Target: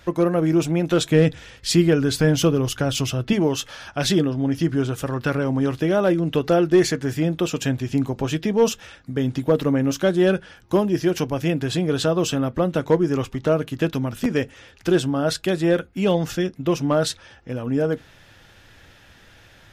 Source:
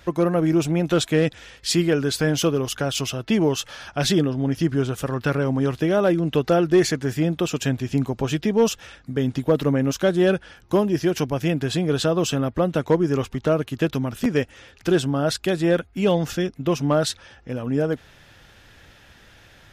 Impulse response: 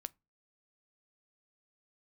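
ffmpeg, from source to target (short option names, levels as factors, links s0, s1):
-filter_complex "[0:a]asettb=1/sr,asplit=3[s0][s1][s2];[s0]atrim=end=1.084[s3];[s1]atrim=start=1.08:end=3.33,asetpts=PTS-STARTPTS,afade=t=in:d=0.004:c=qsin,afade=t=out:st=2.246:d=0.004:c=qsin,lowshelf=f=180:g=9[s4];[s2]atrim=start=3.326[s5];[s3][s4]acrossfade=d=0.004:c1=hsin:c2=qsin[s6];[s6][s5]acrossfade=d=0.004:c1=qsin:c2=hsin[s7];[1:a]atrim=start_sample=2205,asetrate=66150,aresample=44100[s8];[s7][s8]afir=irnorm=-1:irlink=0,volume=2.37"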